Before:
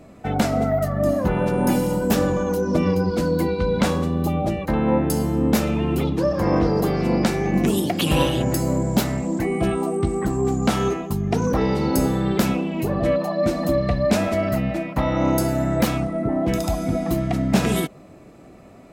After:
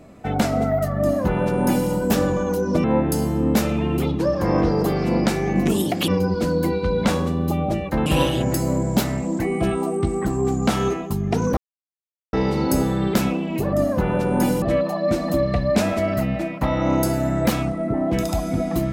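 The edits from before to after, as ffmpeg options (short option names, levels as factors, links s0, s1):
-filter_complex "[0:a]asplit=7[s0][s1][s2][s3][s4][s5][s6];[s0]atrim=end=2.842[s7];[s1]atrim=start=4.818:end=8.062[s8];[s2]atrim=start=2.838:end=4.822[s9];[s3]atrim=start=8.058:end=11.57,asetpts=PTS-STARTPTS,afade=t=out:st=3.508:d=0.004:c=hsin,apad=pad_dur=0.76[s10];[s4]atrim=start=11.57:end=12.972,asetpts=PTS-STARTPTS,afade=t=in:d=0.004:c=hsin[s11];[s5]atrim=start=0.998:end=1.892[s12];[s6]atrim=start=12.968[s13];[s7][s8]acrossfade=d=0.004:c1=hsin:c2=hsin[s14];[s14][s9]acrossfade=d=0.004:c1=hsin:c2=hsin[s15];[s10][s11]concat=n=2:v=0:a=1[s16];[s15][s16]acrossfade=d=0.004:c1=hsin:c2=hsin[s17];[s17][s12]acrossfade=d=0.004:c1=hsin:c2=hsin[s18];[s18][s13]acrossfade=d=0.004:c1=hsin:c2=hsin"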